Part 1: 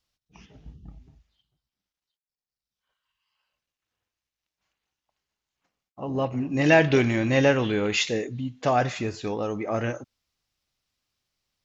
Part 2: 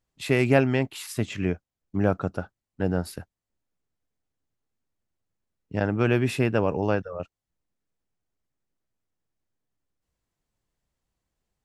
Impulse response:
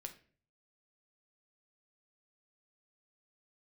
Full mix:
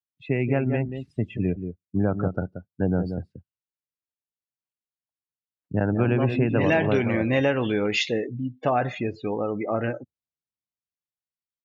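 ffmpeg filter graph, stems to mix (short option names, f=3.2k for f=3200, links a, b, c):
-filter_complex "[0:a]volume=2dB[a];[1:a]lowshelf=f=220:g=8,dynaudnorm=f=170:g=17:m=10dB,volume=-4.5dB,asplit=3[b][c][d];[c]volume=-16dB[e];[d]volume=-8dB[f];[2:a]atrim=start_sample=2205[g];[e][g]afir=irnorm=-1:irlink=0[h];[f]aecho=0:1:180:1[i];[a][b][h][i]amix=inputs=4:normalize=0,afftdn=nr=28:nf=-33,highpass=100,lowpass=5k,acompressor=threshold=-18dB:ratio=4"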